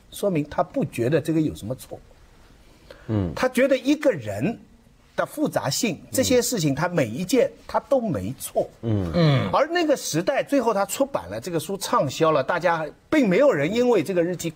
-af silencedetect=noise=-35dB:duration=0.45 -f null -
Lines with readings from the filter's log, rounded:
silence_start: 1.97
silence_end: 2.91 | silence_duration: 0.93
silence_start: 4.56
silence_end: 5.18 | silence_duration: 0.62